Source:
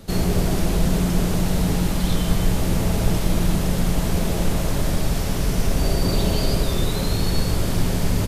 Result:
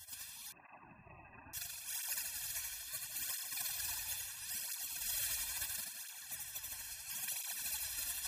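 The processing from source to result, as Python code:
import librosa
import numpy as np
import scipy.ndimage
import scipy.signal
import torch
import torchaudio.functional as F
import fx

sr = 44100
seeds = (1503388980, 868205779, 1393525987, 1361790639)

p1 = fx.spec_dropout(x, sr, seeds[0], share_pct=21)
p2 = scipy.signal.sosfilt(scipy.signal.butter(2, 380.0, 'highpass', fs=sr, output='sos'), p1)
p3 = fx.spec_gate(p2, sr, threshold_db=-20, keep='weak')
p4 = p3 + 0.97 * np.pad(p3, (int(1.2 * sr / 1000.0), 0))[:len(p3)]
p5 = fx.over_compress(p4, sr, threshold_db=-43.0, ratio=-0.5)
p6 = p5 + fx.echo_feedback(p5, sr, ms=81, feedback_pct=52, wet_db=-3.5, dry=0)
p7 = fx.freq_invert(p6, sr, carrier_hz=2600, at=(0.52, 1.54))
p8 = fx.flanger_cancel(p7, sr, hz=0.74, depth_ms=6.3)
y = p8 * librosa.db_to_amplitude(2.0)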